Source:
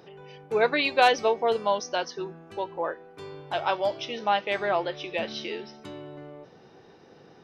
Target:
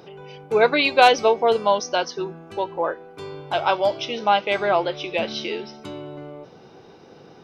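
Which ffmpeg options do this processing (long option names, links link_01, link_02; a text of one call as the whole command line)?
ffmpeg -i in.wav -af "bandreject=frequency=1800:width=8.2,volume=6dB" out.wav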